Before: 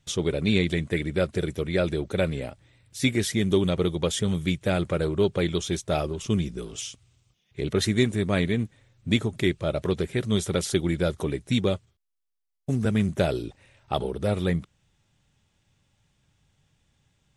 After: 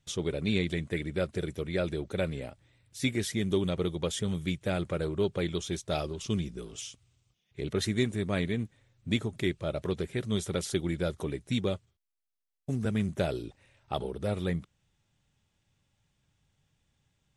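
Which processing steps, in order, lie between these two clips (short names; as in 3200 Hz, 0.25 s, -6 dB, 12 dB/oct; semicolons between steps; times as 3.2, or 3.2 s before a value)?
5.8–6.4 dynamic EQ 4400 Hz, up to +7 dB, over -51 dBFS, Q 1.4; gain -6 dB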